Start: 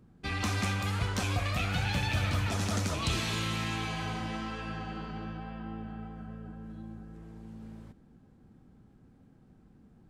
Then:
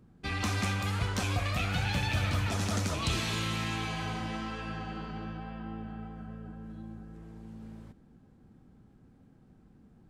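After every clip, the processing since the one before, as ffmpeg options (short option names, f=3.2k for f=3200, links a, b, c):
-af anull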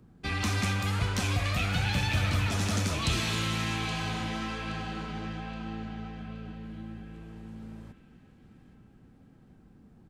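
-filter_complex "[0:a]acrossover=split=340|1500[a][b][c];[b]asoftclip=type=hard:threshold=-39.5dB[d];[c]asplit=2[e][f];[f]adelay=822,lowpass=f=4.3k:p=1,volume=-7.5dB,asplit=2[g][h];[h]adelay=822,lowpass=f=4.3k:p=1,volume=0.51,asplit=2[i][j];[j]adelay=822,lowpass=f=4.3k:p=1,volume=0.51,asplit=2[k][l];[l]adelay=822,lowpass=f=4.3k:p=1,volume=0.51,asplit=2[m][n];[n]adelay=822,lowpass=f=4.3k:p=1,volume=0.51,asplit=2[o][p];[p]adelay=822,lowpass=f=4.3k:p=1,volume=0.51[q];[e][g][i][k][m][o][q]amix=inputs=7:normalize=0[r];[a][d][r]amix=inputs=3:normalize=0,volume=2.5dB"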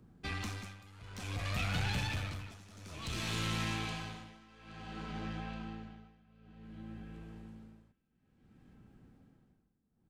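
-af "aeval=exprs='(tanh(17.8*val(0)+0.35)-tanh(0.35))/17.8':c=same,tremolo=f=0.56:d=0.92,volume=-2.5dB"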